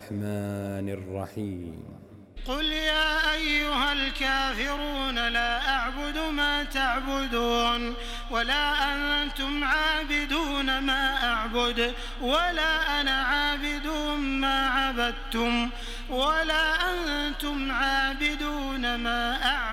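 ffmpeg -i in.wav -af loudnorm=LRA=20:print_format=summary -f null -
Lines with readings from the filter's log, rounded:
Input Integrated:    -26.3 LUFS
Input True Peak:     -11.9 dBTP
Input LRA:             1.5 LU
Input Threshold:     -36.4 LUFS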